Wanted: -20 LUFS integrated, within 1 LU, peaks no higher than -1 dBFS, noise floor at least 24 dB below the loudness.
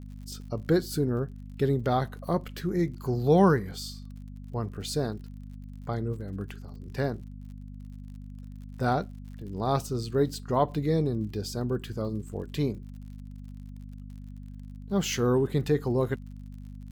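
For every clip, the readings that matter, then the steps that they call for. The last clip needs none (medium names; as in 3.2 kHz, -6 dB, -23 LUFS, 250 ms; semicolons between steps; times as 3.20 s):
tick rate 50 per s; hum 50 Hz; highest harmonic 250 Hz; hum level -40 dBFS; loudness -29.0 LUFS; peak level -9.5 dBFS; loudness target -20.0 LUFS
-> de-click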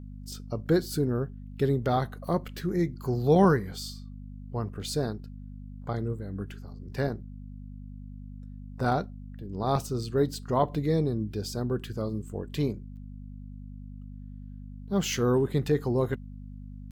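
tick rate 0.71 per s; hum 50 Hz; highest harmonic 250 Hz; hum level -40 dBFS
-> de-hum 50 Hz, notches 5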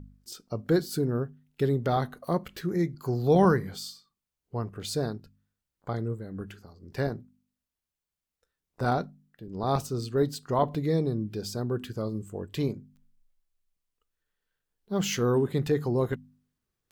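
hum not found; loudness -29.0 LUFS; peak level -10.5 dBFS; loudness target -20.0 LUFS
-> trim +9 dB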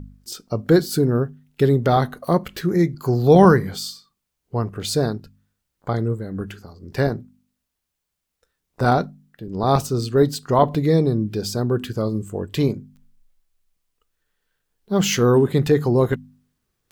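loudness -20.0 LUFS; peak level -1.5 dBFS; noise floor -79 dBFS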